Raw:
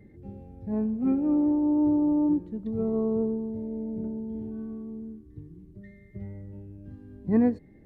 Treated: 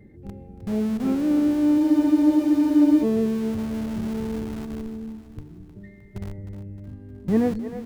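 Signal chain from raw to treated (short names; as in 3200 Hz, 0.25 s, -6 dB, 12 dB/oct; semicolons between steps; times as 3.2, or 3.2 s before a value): dynamic EQ 250 Hz, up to -6 dB, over -43 dBFS, Q 6.2; in parallel at -10 dB: Schmitt trigger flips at -33 dBFS; on the sum: split-band echo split 320 Hz, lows 0.22 s, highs 0.309 s, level -10.5 dB; spectral freeze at 1.8, 1.22 s; gain +3 dB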